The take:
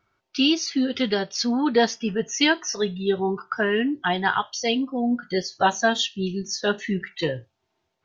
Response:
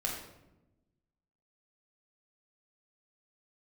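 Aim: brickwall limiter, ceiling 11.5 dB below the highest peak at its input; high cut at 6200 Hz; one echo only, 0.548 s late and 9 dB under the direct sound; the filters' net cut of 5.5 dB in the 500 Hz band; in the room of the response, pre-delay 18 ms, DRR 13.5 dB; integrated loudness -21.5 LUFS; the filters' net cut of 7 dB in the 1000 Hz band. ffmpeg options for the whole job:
-filter_complex "[0:a]lowpass=6.2k,equalizer=f=500:t=o:g=-5.5,equalizer=f=1k:t=o:g=-7.5,alimiter=limit=-20.5dB:level=0:latency=1,aecho=1:1:548:0.355,asplit=2[a][b];[1:a]atrim=start_sample=2205,adelay=18[c];[b][c]afir=irnorm=-1:irlink=0,volume=-17.5dB[d];[a][d]amix=inputs=2:normalize=0,volume=7.5dB"

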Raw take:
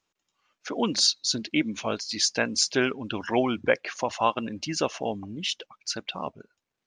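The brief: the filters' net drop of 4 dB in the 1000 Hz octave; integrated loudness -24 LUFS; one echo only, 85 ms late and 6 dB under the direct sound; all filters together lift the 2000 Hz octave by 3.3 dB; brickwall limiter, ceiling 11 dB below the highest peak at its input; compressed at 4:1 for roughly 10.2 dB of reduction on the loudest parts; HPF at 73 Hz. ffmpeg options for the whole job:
-af "highpass=73,equalizer=f=1k:t=o:g=-6.5,equalizer=f=2k:t=o:g=6.5,acompressor=threshold=-28dB:ratio=4,alimiter=level_in=0.5dB:limit=-24dB:level=0:latency=1,volume=-0.5dB,aecho=1:1:85:0.501,volume=11dB"

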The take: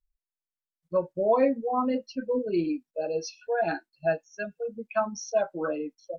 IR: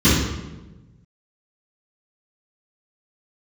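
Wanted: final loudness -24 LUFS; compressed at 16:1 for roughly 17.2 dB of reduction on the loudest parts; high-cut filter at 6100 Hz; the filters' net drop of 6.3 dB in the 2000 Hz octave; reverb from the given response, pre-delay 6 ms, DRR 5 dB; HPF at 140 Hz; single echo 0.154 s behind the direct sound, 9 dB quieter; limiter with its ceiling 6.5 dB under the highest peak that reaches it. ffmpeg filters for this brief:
-filter_complex "[0:a]highpass=140,lowpass=6.1k,equalizer=f=2k:t=o:g=-9,acompressor=threshold=-36dB:ratio=16,alimiter=level_in=9.5dB:limit=-24dB:level=0:latency=1,volume=-9.5dB,aecho=1:1:154:0.355,asplit=2[a][b];[1:a]atrim=start_sample=2205,adelay=6[c];[b][c]afir=irnorm=-1:irlink=0,volume=-27.5dB[d];[a][d]amix=inputs=2:normalize=0,volume=14.5dB"

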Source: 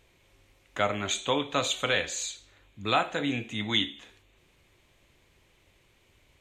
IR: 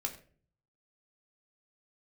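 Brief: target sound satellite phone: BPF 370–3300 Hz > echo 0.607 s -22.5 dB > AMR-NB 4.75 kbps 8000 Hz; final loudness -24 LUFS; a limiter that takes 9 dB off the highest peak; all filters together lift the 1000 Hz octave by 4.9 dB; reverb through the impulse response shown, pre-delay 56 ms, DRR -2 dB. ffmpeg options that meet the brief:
-filter_complex "[0:a]equalizer=f=1k:t=o:g=7,alimiter=limit=-17.5dB:level=0:latency=1,asplit=2[a][b];[1:a]atrim=start_sample=2205,adelay=56[c];[b][c]afir=irnorm=-1:irlink=0,volume=1dB[d];[a][d]amix=inputs=2:normalize=0,highpass=370,lowpass=3.3k,aecho=1:1:607:0.075,volume=9dB" -ar 8000 -c:a libopencore_amrnb -b:a 4750

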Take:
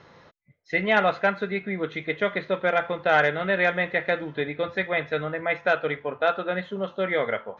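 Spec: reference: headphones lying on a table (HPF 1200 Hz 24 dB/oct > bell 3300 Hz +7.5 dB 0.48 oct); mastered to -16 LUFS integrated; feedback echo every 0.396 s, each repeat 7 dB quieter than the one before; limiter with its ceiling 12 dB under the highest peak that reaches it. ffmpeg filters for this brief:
-af "alimiter=limit=-21dB:level=0:latency=1,highpass=f=1.2k:w=0.5412,highpass=f=1.2k:w=1.3066,equalizer=f=3.3k:t=o:w=0.48:g=7.5,aecho=1:1:396|792|1188|1584|1980:0.447|0.201|0.0905|0.0407|0.0183,volume=17.5dB"

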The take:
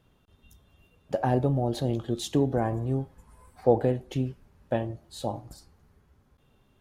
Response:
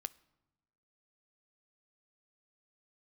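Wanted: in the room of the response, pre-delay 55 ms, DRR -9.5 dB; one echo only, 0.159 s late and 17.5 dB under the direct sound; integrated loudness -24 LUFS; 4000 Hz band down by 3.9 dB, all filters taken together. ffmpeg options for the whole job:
-filter_complex "[0:a]equalizer=f=4k:t=o:g=-4.5,aecho=1:1:159:0.133,asplit=2[a][b];[1:a]atrim=start_sample=2205,adelay=55[c];[b][c]afir=irnorm=-1:irlink=0,volume=12.5dB[d];[a][d]amix=inputs=2:normalize=0,volume=-5.5dB"

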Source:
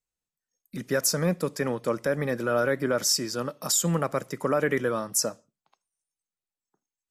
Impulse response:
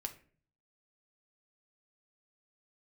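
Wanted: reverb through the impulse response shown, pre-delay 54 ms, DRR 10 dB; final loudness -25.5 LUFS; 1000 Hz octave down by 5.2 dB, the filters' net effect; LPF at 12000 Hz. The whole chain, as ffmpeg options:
-filter_complex "[0:a]lowpass=12k,equalizer=f=1k:t=o:g=-7.5,asplit=2[a][b];[1:a]atrim=start_sample=2205,adelay=54[c];[b][c]afir=irnorm=-1:irlink=0,volume=-8.5dB[d];[a][d]amix=inputs=2:normalize=0,volume=1.5dB"

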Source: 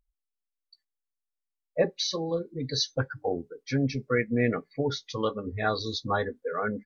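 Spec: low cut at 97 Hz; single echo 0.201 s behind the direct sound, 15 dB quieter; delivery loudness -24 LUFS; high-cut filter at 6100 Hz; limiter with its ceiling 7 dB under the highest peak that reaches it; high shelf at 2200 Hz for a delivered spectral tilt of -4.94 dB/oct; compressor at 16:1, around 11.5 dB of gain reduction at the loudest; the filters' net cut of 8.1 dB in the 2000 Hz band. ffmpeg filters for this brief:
-af "highpass=97,lowpass=6.1k,equalizer=f=2k:t=o:g=-8.5,highshelf=f=2.2k:g=-5,acompressor=threshold=-30dB:ratio=16,alimiter=level_in=3.5dB:limit=-24dB:level=0:latency=1,volume=-3.5dB,aecho=1:1:201:0.178,volume=14.5dB"

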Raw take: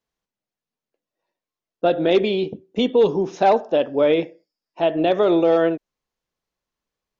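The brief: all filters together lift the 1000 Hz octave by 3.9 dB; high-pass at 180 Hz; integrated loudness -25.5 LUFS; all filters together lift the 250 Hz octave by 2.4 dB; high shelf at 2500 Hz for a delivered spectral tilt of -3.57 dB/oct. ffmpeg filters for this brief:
-af "highpass=180,equalizer=f=250:t=o:g=4,equalizer=f=1k:t=o:g=5,highshelf=f=2.5k:g=4,volume=-8.5dB"

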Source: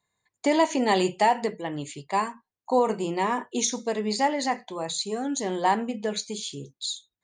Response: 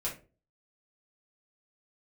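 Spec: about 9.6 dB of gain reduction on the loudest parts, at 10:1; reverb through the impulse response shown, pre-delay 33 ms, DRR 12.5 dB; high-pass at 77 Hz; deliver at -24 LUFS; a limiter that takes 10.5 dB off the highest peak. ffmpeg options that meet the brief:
-filter_complex "[0:a]highpass=77,acompressor=threshold=-26dB:ratio=10,alimiter=level_in=1dB:limit=-24dB:level=0:latency=1,volume=-1dB,asplit=2[a][b];[1:a]atrim=start_sample=2205,adelay=33[c];[b][c]afir=irnorm=-1:irlink=0,volume=-15.5dB[d];[a][d]amix=inputs=2:normalize=0,volume=10.5dB"

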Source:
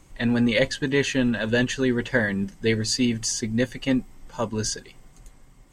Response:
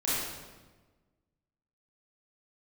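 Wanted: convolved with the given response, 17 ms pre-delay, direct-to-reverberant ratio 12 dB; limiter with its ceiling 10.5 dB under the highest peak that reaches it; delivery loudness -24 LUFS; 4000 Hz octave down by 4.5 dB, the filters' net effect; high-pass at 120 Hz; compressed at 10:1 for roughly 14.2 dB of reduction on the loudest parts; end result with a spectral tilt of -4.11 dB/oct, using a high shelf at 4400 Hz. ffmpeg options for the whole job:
-filter_complex "[0:a]highpass=120,equalizer=f=4k:t=o:g=-3.5,highshelf=f=4.4k:g=-4.5,acompressor=threshold=-32dB:ratio=10,alimiter=level_in=6dB:limit=-24dB:level=0:latency=1,volume=-6dB,asplit=2[a][b];[1:a]atrim=start_sample=2205,adelay=17[c];[b][c]afir=irnorm=-1:irlink=0,volume=-21.5dB[d];[a][d]amix=inputs=2:normalize=0,volume=15.5dB"

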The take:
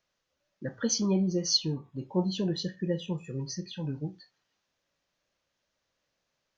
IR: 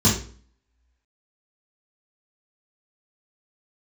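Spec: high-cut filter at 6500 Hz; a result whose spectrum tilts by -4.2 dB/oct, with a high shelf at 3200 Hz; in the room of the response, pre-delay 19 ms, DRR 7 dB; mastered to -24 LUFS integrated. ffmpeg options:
-filter_complex "[0:a]lowpass=6.5k,highshelf=f=3.2k:g=8.5,asplit=2[a][b];[1:a]atrim=start_sample=2205,adelay=19[c];[b][c]afir=irnorm=-1:irlink=0,volume=-24dB[d];[a][d]amix=inputs=2:normalize=0,volume=0.5dB"

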